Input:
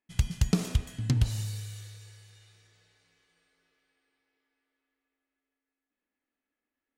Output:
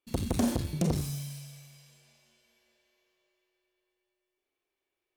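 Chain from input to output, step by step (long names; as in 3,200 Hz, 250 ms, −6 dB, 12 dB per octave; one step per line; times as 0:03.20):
on a send at −2 dB: convolution reverb RT60 0.50 s, pre-delay 40 ms
on the sum: wrong playback speed 33 rpm record played at 45 rpm
saturating transformer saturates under 470 Hz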